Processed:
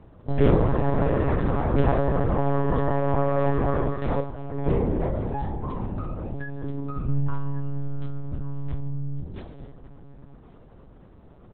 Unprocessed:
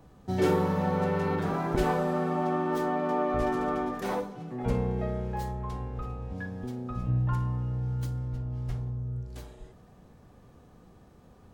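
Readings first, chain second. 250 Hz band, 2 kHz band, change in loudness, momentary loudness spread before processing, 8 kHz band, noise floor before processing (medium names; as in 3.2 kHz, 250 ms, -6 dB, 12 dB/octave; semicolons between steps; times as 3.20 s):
+3.5 dB, +0.5 dB, +4.0 dB, 10 LU, no reading, -55 dBFS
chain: bass shelf 150 Hz -7 dB; delay 1146 ms -18 dB; monotone LPC vocoder at 8 kHz 140 Hz; tilt shelf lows +4.5 dB, about 630 Hz; trim +5 dB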